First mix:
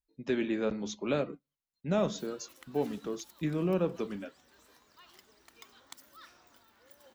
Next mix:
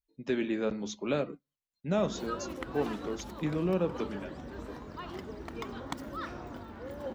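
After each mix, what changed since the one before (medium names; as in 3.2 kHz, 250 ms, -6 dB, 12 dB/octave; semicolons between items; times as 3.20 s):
background: remove pre-emphasis filter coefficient 0.97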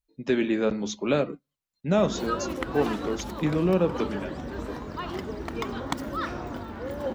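speech +6.5 dB; background +8.0 dB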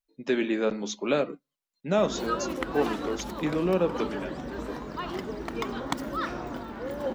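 speech: add peaking EQ 67 Hz -11.5 dB 2.3 oct; master: add peaking EQ 85 Hz -15 dB 0.5 oct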